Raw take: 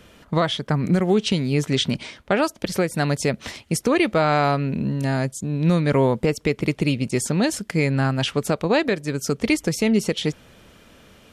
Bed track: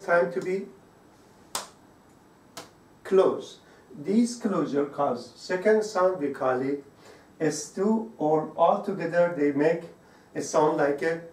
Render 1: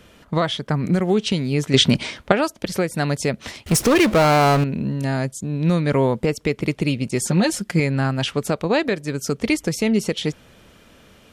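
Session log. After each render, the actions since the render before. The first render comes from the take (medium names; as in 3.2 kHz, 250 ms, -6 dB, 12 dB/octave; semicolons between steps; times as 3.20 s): 1.74–2.32 s: gain +7 dB; 3.66–4.64 s: power-law waveshaper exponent 0.5; 7.21–7.80 s: comb 5.6 ms, depth 76%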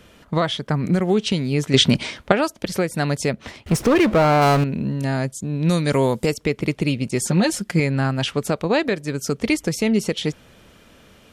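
3.33–4.42 s: treble shelf 3.4 kHz -10 dB; 5.69–6.34 s: tone controls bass -1 dB, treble +13 dB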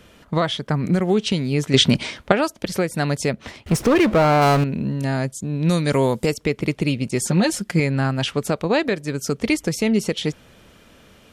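no audible change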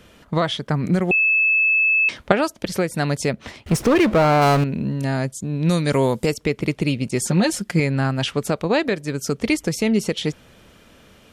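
1.11–2.09 s: bleep 2.61 kHz -14 dBFS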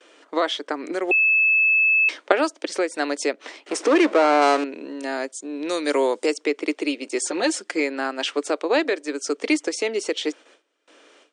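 gate with hold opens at -39 dBFS; Chebyshev band-pass 290–9000 Hz, order 5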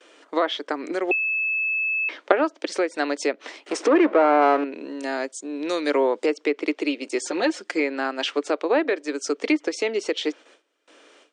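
low-pass that closes with the level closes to 1.9 kHz, closed at -15.5 dBFS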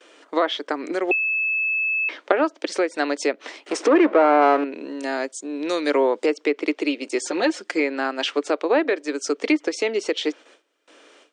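trim +1.5 dB; peak limiter -3 dBFS, peak gain reduction 3 dB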